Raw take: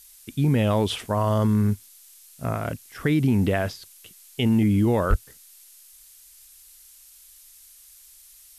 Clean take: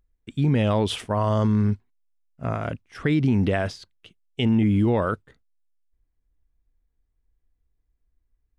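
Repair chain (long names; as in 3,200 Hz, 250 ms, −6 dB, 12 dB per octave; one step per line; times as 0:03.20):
clipped peaks rebuilt −11 dBFS
0:05.09–0:05.21: high-pass filter 140 Hz 24 dB per octave
noise reduction from a noise print 20 dB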